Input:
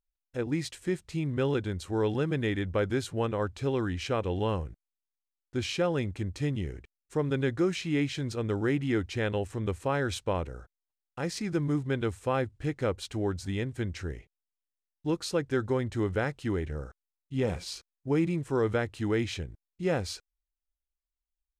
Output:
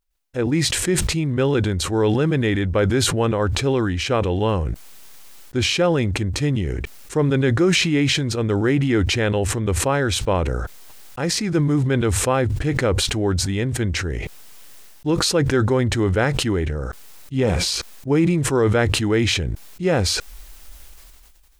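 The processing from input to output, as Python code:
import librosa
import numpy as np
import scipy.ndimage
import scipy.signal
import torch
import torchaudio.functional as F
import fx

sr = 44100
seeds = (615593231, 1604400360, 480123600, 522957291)

y = fx.sustainer(x, sr, db_per_s=24.0)
y = y * 10.0 ** (8.5 / 20.0)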